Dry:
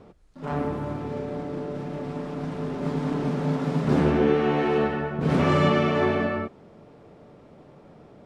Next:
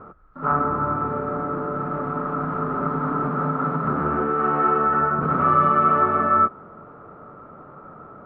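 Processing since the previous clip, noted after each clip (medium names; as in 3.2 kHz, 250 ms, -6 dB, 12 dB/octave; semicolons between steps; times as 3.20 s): compression 6:1, threshold -26 dBFS, peak gain reduction 10 dB; resonant low-pass 1.3 kHz, resonance Q 15; trim +3 dB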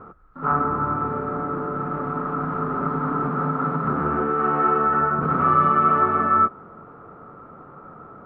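band-stop 600 Hz, Q 12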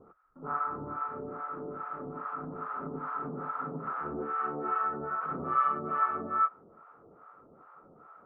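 harmonic tremolo 2.4 Hz, depth 100%, crossover 680 Hz; tone controls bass -8 dB, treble -11 dB; trim -6.5 dB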